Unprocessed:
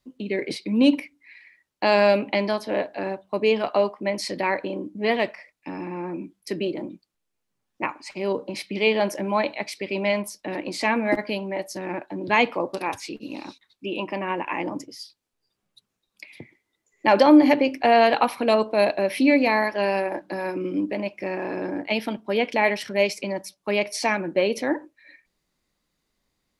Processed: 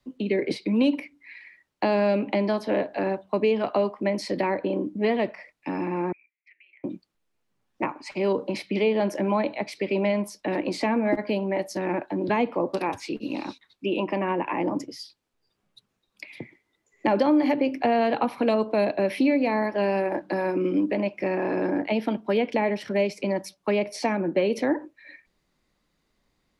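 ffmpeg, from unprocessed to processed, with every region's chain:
-filter_complex "[0:a]asettb=1/sr,asplit=3[s0][s1][s2];[s0]atrim=end=6.124[s3];[s1]atrim=start=6.12:end=6.84,asetpts=PTS-STARTPTS,afade=t=in:d=0.004:c=qsin,afade=t=out:st=0.716:d=0.004:c=qsin,asuperpass=centerf=2200:order=4:qfactor=4.6,acompressor=threshold=0.00178:ratio=6:attack=3.2:release=140:knee=1:detection=peak[s4];[s2]atrim=start=6.836[s5];[s3][s4]acrossfade=d=0.004:c1=hsin:c2=qsin[s6];[s6][s5]acrossfade=d=0.004:c1=qsin:c2=hsin,highshelf=f=5100:g=-9,acrossover=split=140|390|1000[s7][s8][s9][s10];[s7]acompressor=threshold=0.00251:ratio=4[s11];[s8]acompressor=threshold=0.0398:ratio=4[s12];[s9]acompressor=threshold=0.0251:ratio=4[s13];[s10]acompressor=threshold=0.0112:ratio=4[s14];[s11][s12][s13][s14]amix=inputs=4:normalize=0,volume=1.68"

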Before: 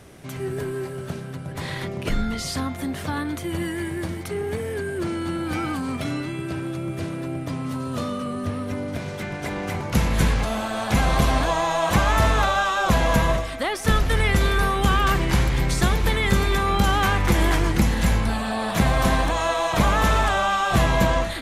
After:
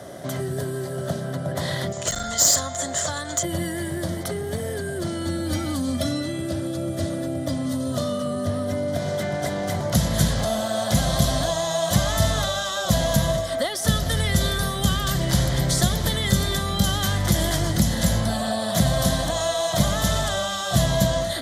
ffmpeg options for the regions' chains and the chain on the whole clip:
-filter_complex "[0:a]asettb=1/sr,asplit=3[s0][s1][s2];[s0]atrim=end=1.924[s3];[s1]atrim=start=1.92:end=3.43,asetpts=PTS-STARTPTS,afade=t=in:d=0.004:c=qsin,afade=t=out:st=1.506:d=0.004:c=qsin,lowpass=f=7100:t=q:w=13,equalizer=f=250:t=o:w=2.1:g=-13.5,aeval=exprs='clip(val(0),-1,0.0668)':c=same[s4];[s2]atrim=start=3.426[s5];[s3][s4]acrossfade=d=0.004:c1=hsin:c2=qsin[s6];[s6][s5]acrossfade=d=0.004:c1=qsin:c2=hsin,asettb=1/sr,asplit=3[s7][s8][s9];[s7]atrim=end=5.254[s10];[s8]atrim=start=5.25:end=7.92,asetpts=PTS-STARTPTS,afade=t=in:d=0.004:c=qsin,afade=t=out:st=2.666:d=0.004:c=qsin,highpass=48,lowshelf=f=94:g=10,aecho=1:1:3.5:0.66,atrim=end_sample=117747[s11];[s9]atrim=start=7.916[s12];[s10][s11]acrossfade=d=0.004:c1=hsin:c2=qsin[s13];[s13][s12]acrossfade=d=0.004:c1=qsin:c2=hsin,highpass=110,acrossover=split=180|3000[s14][s15][s16];[s15]acompressor=threshold=0.0158:ratio=10[s17];[s14][s17][s16]amix=inputs=3:normalize=0,superequalizer=8b=3.16:12b=0.282,volume=2.11"

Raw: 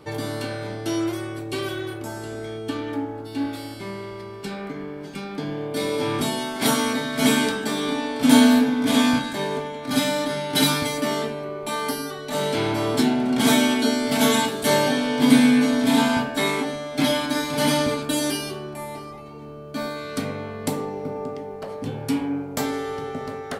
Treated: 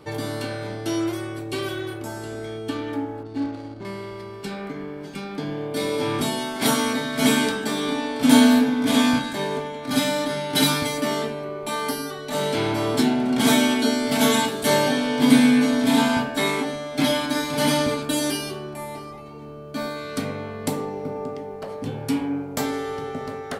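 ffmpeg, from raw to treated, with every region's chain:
-filter_complex "[0:a]asettb=1/sr,asplit=3[s0][s1][s2];[s0]atrim=end=3.234[s3];[s1]atrim=start=3.23:end=3.85,asetpts=PTS-STARTPTS,afade=t=in:d=0.004:c=qsin,afade=t=out:st=0.616:d=0.004:c=qsin,lowpass=f=4500:t=q:w=9.1,highshelf=f=2100:g=-11.5,adynamicsmooth=sensitivity=4.5:basefreq=570[s4];[s2]atrim=start=3.846[s5];[s3][s4]acrossfade=d=0.004:c1=hsin:c2=qsin[s6];[s6][s5]acrossfade=d=0.004:c1=qsin:c2=hsin"

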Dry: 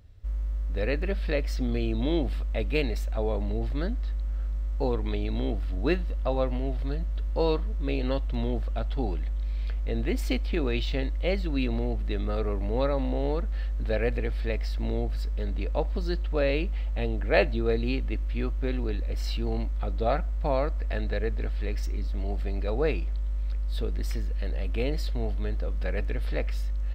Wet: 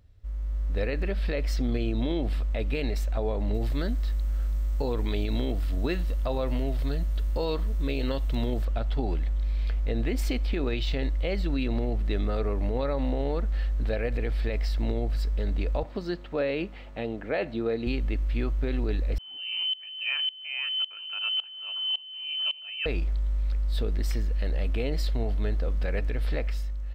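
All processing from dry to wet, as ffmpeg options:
-filter_complex "[0:a]asettb=1/sr,asplit=3[s0][s1][s2];[s0]atrim=end=3.544[s3];[s1]atrim=start=3.54:end=8.65,asetpts=PTS-STARTPTS,afade=t=in:d=0.004:c=qsin,afade=t=out:st=5.106:d=0.004:c=qsin,aemphasis=mode=production:type=50kf,bandreject=f=760:w=19[s4];[s2]atrim=start=8.646[s5];[s3][s4]acrossfade=d=0.004:c1=hsin:c2=qsin[s6];[s6][s5]acrossfade=d=0.004:c1=qsin:c2=hsin,asettb=1/sr,asplit=3[s7][s8][s9];[s7]atrim=end=15.834[s10];[s8]atrim=start=15.83:end=17.87,asetpts=PTS-STARTPTS,afade=t=in:d=0.004:c=qsin,afade=t=out:st=2.036:d=0.004:c=qsin,highpass=140,highshelf=f=4900:g=-9[s11];[s9]atrim=start=17.866[s12];[s10][s11]acrossfade=d=0.004:c1=hsin:c2=qsin[s13];[s13][s12]acrossfade=d=0.004:c1=qsin:c2=hsin,asettb=1/sr,asplit=3[s14][s15][s16];[s14]atrim=end=19.184[s17];[s15]atrim=start=19.18:end=22.86,asetpts=PTS-STARTPTS,afade=t=in:d=0.004:c=qsin,afade=t=out:st=3.676:d=0.004:c=qsin,lowpass=f=2600:t=q:w=0.5098,lowpass=f=2600:t=q:w=0.6013,lowpass=f=2600:t=q:w=0.9,lowpass=f=2600:t=q:w=2.563,afreqshift=-3100,aeval=exprs='val(0)*pow(10,-22*if(lt(mod(-1.8*n/s,1),2*abs(-1.8)/1000),1-mod(-1.8*n/s,1)/(2*abs(-1.8)/1000),(mod(-1.8*n/s,1)-2*abs(-1.8)/1000)/(1-2*abs(-1.8)/1000))/20)':c=same[s18];[s16]atrim=start=22.856[s19];[s17][s18]acrossfade=d=0.004:c1=hsin:c2=qsin[s20];[s20][s19]acrossfade=d=0.004:c1=qsin:c2=hsin,dynaudnorm=f=110:g=9:m=2.24,alimiter=limit=0.188:level=0:latency=1:release=62,volume=0.596"

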